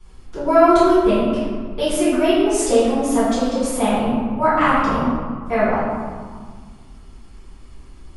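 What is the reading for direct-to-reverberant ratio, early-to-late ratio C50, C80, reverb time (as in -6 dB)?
-14.5 dB, -2.5 dB, 0.5 dB, 1.7 s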